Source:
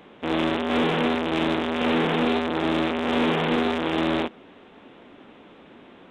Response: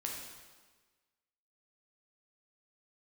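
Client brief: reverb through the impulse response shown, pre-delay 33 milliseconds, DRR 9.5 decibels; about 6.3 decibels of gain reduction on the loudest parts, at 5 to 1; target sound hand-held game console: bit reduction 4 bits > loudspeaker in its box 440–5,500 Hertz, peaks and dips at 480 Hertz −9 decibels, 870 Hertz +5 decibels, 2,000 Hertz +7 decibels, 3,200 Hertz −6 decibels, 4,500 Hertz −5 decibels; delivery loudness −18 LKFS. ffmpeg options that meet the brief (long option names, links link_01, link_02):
-filter_complex "[0:a]acompressor=threshold=-26dB:ratio=5,asplit=2[link_01][link_02];[1:a]atrim=start_sample=2205,adelay=33[link_03];[link_02][link_03]afir=irnorm=-1:irlink=0,volume=-10.5dB[link_04];[link_01][link_04]amix=inputs=2:normalize=0,acrusher=bits=3:mix=0:aa=0.000001,highpass=440,equalizer=frequency=480:width_type=q:width=4:gain=-9,equalizer=frequency=870:width_type=q:width=4:gain=5,equalizer=frequency=2000:width_type=q:width=4:gain=7,equalizer=frequency=3200:width_type=q:width=4:gain=-6,equalizer=frequency=4500:width_type=q:width=4:gain=-5,lowpass=frequency=5500:width=0.5412,lowpass=frequency=5500:width=1.3066,volume=10dB"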